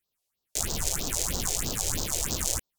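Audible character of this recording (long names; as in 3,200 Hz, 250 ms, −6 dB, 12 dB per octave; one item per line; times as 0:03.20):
phaser sweep stages 4, 3.1 Hz, lowest notch 190–2,200 Hz
Ogg Vorbis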